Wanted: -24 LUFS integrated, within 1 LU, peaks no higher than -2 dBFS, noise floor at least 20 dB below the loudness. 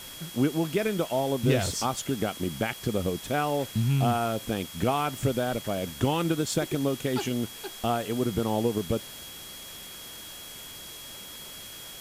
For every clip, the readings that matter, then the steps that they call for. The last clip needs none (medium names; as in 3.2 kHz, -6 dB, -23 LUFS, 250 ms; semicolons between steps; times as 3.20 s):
steady tone 3.3 kHz; tone level -45 dBFS; noise floor -43 dBFS; noise floor target -48 dBFS; loudness -28.0 LUFS; peak level -10.5 dBFS; loudness target -24.0 LUFS
-> band-stop 3.3 kHz, Q 30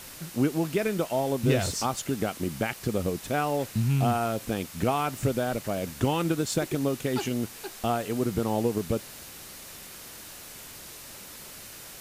steady tone not found; noise floor -45 dBFS; noise floor target -49 dBFS
-> noise print and reduce 6 dB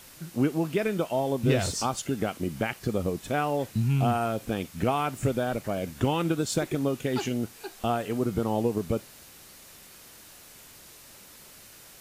noise floor -50 dBFS; loudness -28.5 LUFS; peak level -10.5 dBFS; loudness target -24.0 LUFS
-> trim +4.5 dB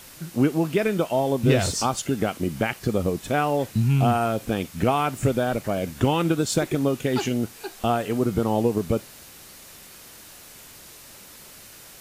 loudness -24.0 LUFS; peak level -6.0 dBFS; noise floor -46 dBFS